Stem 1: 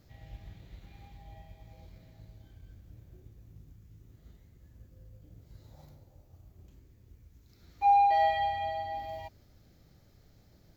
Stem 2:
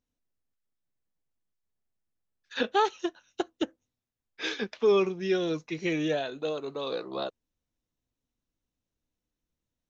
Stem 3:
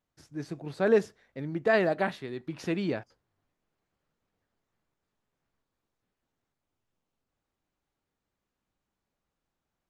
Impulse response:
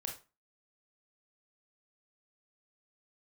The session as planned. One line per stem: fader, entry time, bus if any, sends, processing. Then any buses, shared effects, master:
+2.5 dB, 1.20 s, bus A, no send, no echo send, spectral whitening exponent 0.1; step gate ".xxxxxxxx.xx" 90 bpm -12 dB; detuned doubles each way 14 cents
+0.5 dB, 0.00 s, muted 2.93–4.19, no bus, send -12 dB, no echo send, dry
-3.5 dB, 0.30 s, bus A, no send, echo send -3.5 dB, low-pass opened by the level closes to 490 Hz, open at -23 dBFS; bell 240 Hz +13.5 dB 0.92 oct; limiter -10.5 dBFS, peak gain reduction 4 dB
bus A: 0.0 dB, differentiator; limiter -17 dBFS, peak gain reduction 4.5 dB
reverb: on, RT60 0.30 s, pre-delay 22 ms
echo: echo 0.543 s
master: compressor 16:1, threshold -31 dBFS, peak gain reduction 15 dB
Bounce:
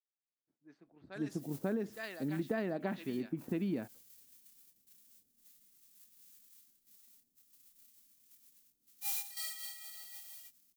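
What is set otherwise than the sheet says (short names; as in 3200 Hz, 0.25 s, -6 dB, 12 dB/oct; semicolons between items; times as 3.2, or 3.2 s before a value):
stem 1 +2.5 dB -> -7.5 dB; stem 2: muted; reverb: off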